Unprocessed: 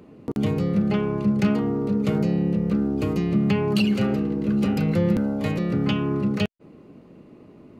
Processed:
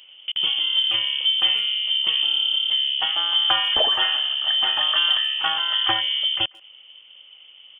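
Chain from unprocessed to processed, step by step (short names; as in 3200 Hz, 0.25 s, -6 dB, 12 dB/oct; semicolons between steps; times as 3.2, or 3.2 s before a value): inverted band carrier 3300 Hz; speakerphone echo 0.14 s, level -23 dB; spectral gain 3.01–6.01, 620–1900 Hz +12 dB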